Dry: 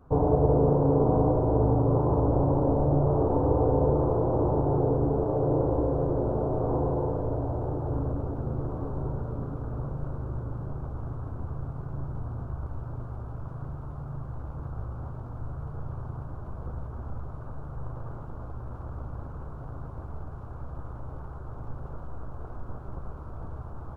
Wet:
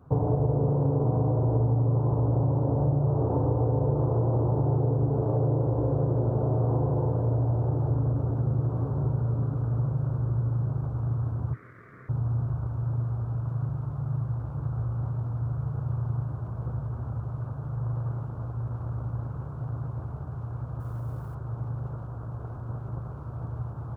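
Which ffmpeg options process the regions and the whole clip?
-filter_complex "[0:a]asettb=1/sr,asplit=3[a][b][c];[a]atrim=end=11.534[d];[b]atrim=start=11.53:end=12.09,asetpts=PTS-STARTPTS,afade=t=in:d=0.004:c=qsin,afade=t=out:st=0.556:d=0.004:c=qsin,highpass=f=360:w=0.5412,highpass=f=360:w=1.3066,aeval=exprs='val(0)*sin(2*PI*790*n/s)':c=same[e];[c]atrim=start=12.086[f];[d][e]acrossfade=d=0.004:c1=hsin:c2=qsin[g];[g][f]acrossfade=d=0.004:c1=qsin:c2=hsin,asettb=1/sr,asplit=3[h][i][j];[h]atrim=end=20.804[k];[i]atrim=start=20.8:end=21.35,asetpts=PTS-STARTPTS,afade=t=in:d=0.004:c=qsin,afade=t=out:st=0.546:d=0.004:c=qsin,aemphasis=mode=production:type=75kf,bandreject=f=840:w=14[l];[j]atrim=start=21.346[m];[k][l]acrossfade=d=0.004:c1=hsin:c2=qsin[n];[n][m]acrossfade=d=0.004:c1=qsin:c2=hsin,highpass=74,equalizer=f=120:t=o:w=0.67:g=12,acompressor=threshold=-21dB:ratio=6"

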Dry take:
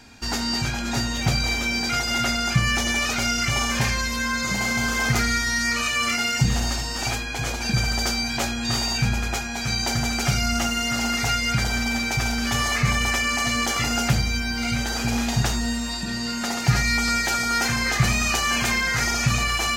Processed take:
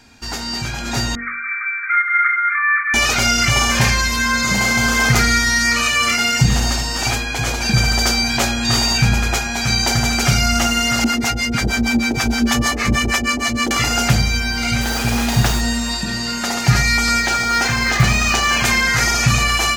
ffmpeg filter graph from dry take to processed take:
-filter_complex "[0:a]asettb=1/sr,asplit=3[a][b][c];[a]atrim=end=1.154[d];[b]atrim=start=1.15:end=2.94,asetpts=PTS-STARTPTS,afade=t=in:d=0.004:c=qsin,afade=t=out:st=1.786:d=0.004:c=qsin,asuperpass=centerf=1600:order=20:qfactor=1.4,adynamicequalizer=threshold=0.0141:dfrequency=1500:dqfactor=0.7:tfrequency=1500:tqfactor=0.7:attack=5:release=100:ratio=0.375:range=2.5:mode=boostabove:tftype=highshelf[e];[c]atrim=start=2.936[f];[d][e]acrossfade=d=0.004:c1=hsin:c2=qsin[g];[g][f]acrossfade=d=0.004:c1=qsin:c2=hsin,asettb=1/sr,asplit=3[h][i][j];[h]atrim=end=11.044[k];[i]atrim=start=11.04:end=13.71,asetpts=PTS-STARTPTS,afade=t=in:d=0.004:c=qsin,afade=t=out:st=2.666:d=0.004:c=qsin,equalizer=f=300:w=1.2:g=11,acrossover=split=570[l][m];[l]aeval=exprs='val(0)*(1-1/2+1/2*cos(2*PI*6.4*n/s))':c=same[n];[m]aeval=exprs='val(0)*(1-1/2-1/2*cos(2*PI*6.4*n/s))':c=same[o];[n][o]amix=inputs=2:normalize=0[p];[j]atrim=start=13.706[q];[k][p]acrossfade=d=0.004:c1=hsin:c2=qsin[r];[r][q]acrossfade=d=0.004:c1=qsin:c2=hsin,asettb=1/sr,asplit=3[s][t][u];[s]atrim=end=14.814[v];[t]atrim=start=14.81:end=15.61,asetpts=PTS-STARTPTS,afade=t=in:d=0.004:c=qsin,afade=t=out:st=0.796:d=0.004:c=qsin,equalizer=f=8.2k:w=0.64:g=-4,acrusher=bits=4:mix=0:aa=0.5[w];[u]atrim=start=15.606[x];[v][w]acrossfade=d=0.004:c1=hsin:c2=qsin[y];[y][x]acrossfade=d=0.004:c1=qsin:c2=hsin,asettb=1/sr,asplit=3[z][aa][ab];[z]atrim=end=17.204[ac];[aa]atrim=start=17.2:end=18.64,asetpts=PTS-STARTPTS,afade=t=in:d=0.004:c=qsin,afade=t=out:st=1.436:d=0.004:c=qsin,adynamicsmooth=sensitivity=1.5:basefreq=6.9k,acrusher=bits=6:mode=log:mix=0:aa=0.000001[ad];[ab]atrim=start=18.636[ae];[ac][ad]acrossfade=d=0.004:c1=hsin:c2=qsin[af];[af][ae]acrossfade=d=0.004:c1=qsin:c2=hsin,bandreject=f=47.56:t=h:w=4,bandreject=f=95.12:t=h:w=4,bandreject=f=142.68:t=h:w=4,bandreject=f=190.24:t=h:w=4,bandreject=f=237.8:t=h:w=4,bandreject=f=285.36:t=h:w=4,bandreject=f=332.92:t=h:w=4,bandreject=f=380.48:t=h:w=4,bandreject=f=428.04:t=h:w=4,bandreject=f=475.6:t=h:w=4,bandreject=f=523.16:t=h:w=4,bandreject=f=570.72:t=h:w=4,bandreject=f=618.28:t=h:w=4,bandreject=f=665.84:t=h:w=4,bandreject=f=713.4:t=h:w=4,bandreject=f=760.96:t=h:w=4,bandreject=f=808.52:t=h:w=4,bandreject=f=856.08:t=h:w=4,dynaudnorm=f=680:g=3:m=9.5dB"

